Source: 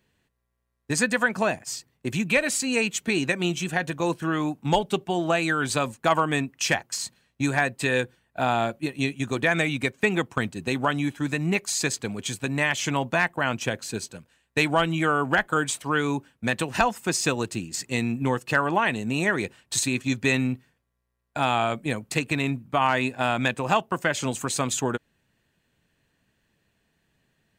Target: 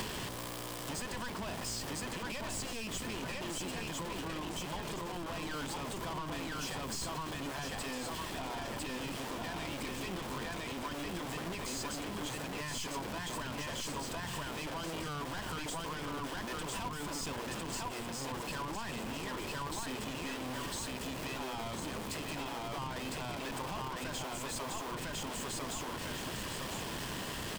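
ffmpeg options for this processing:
-filter_complex "[0:a]aeval=exprs='val(0)+0.5*0.0398*sgn(val(0))':c=same,aecho=1:1:1004|2008|3012|4016:0.708|0.205|0.0595|0.0173,asplit=2[s0][s1];[s1]alimiter=limit=0.106:level=0:latency=1,volume=1[s2];[s0][s2]amix=inputs=2:normalize=0,aeval=exprs='(tanh(14.1*val(0)+0.3)-tanh(0.3))/14.1':c=same,equalizer=f=125:t=o:w=0.33:g=5,equalizer=f=1000:t=o:w=0.33:g=11,equalizer=f=3150:t=o:w=0.33:g=7,equalizer=f=5000:t=o:w=0.33:g=5,equalizer=f=8000:t=o:w=0.33:g=4,acrossover=split=130[s3][s4];[s3]aeval=exprs='(mod(59.6*val(0)+1,2)-1)/59.6':c=same[s5];[s4]acompressor=threshold=0.0141:ratio=5[s6];[s5][s6]amix=inputs=2:normalize=0,volume=0.668"

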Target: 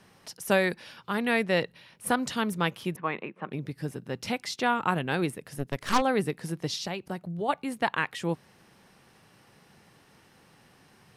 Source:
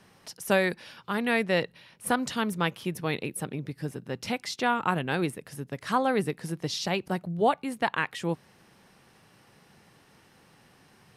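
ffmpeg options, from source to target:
-filter_complex "[0:a]asettb=1/sr,asplit=3[s0][s1][s2];[s0]atrim=end=2.964[s3];[s1]atrim=start=2.96:end=3.52,asetpts=PTS-STARTPTS,afade=t=in:d=0.004:c=qsin,afade=t=out:st=0.556:d=0.004:c=qsin,highpass=f=190:w=0.5412,highpass=f=190:w=1.3066,equalizer=f=270:t=q:w=4:g=-8,equalizer=f=450:t=q:w=4:g=-5,equalizer=f=1100:t=q:w=4:g=9,lowpass=f=2500:w=0.5412,lowpass=f=2500:w=1.3066[s4];[s2]atrim=start=3.516[s5];[s3][s4]acrossfade=d=0.004:c1=hsin:c2=qsin[s6];[s6][s5]acrossfade=d=0.004:c1=qsin:c2=hsin,asplit=3[s7][s8][s9];[s7]afade=t=out:st=5.57:d=0.02[s10];[s8]aeval=exprs='0.237*(cos(1*acos(clip(val(0)/0.237,-1,1)))-cos(1*PI/2))+0.0531*(cos(8*acos(clip(val(0)/0.237,-1,1)))-cos(8*PI/2))':c=same,afade=t=in:st=5.57:d=0.02,afade=t=out:st=6:d=0.02[s11];[s9]afade=t=in:st=6:d=0.02[s12];[s10][s11][s12]amix=inputs=3:normalize=0,asplit=3[s13][s14][s15];[s13]afade=t=out:st=6.75:d=0.02[s16];[s14]acompressor=threshold=0.0224:ratio=2.5,afade=t=in:st=6.75:d=0.02,afade=t=out:st=7.48:d=0.02[s17];[s15]afade=t=in:st=7.48:d=0.02[s18];[s16][s17][s18]amix=inputs=3:normalize=0"

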